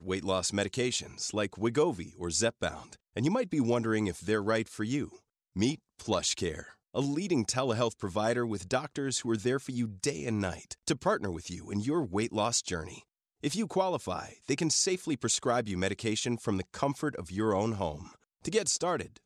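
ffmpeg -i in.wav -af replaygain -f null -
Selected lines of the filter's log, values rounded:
track_gain = +12.0 dB
track_peak = 0.140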